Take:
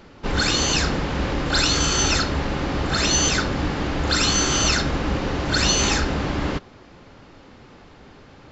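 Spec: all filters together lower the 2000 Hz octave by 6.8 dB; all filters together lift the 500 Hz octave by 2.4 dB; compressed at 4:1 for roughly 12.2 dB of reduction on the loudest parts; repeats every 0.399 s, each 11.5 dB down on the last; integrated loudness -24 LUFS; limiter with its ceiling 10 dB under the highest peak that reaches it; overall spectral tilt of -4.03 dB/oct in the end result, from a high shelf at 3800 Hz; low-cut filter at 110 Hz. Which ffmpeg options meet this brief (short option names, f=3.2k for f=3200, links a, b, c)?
-af "highpass=110,equalizer=f=500:t=o:g=3.5,equalizer=f=2k:t=o:g=-9,highshelf=f=3.8k:g=-4,acompressor=threshold=-34dB:ratio=4,alimiter=level_in=7.5dB:limit=-24dB:level=0:latency=1,volume=-7.5dB,aecho=1:1:399|798|1197:0.266|0.0718|0.0194,volume=16.5dB"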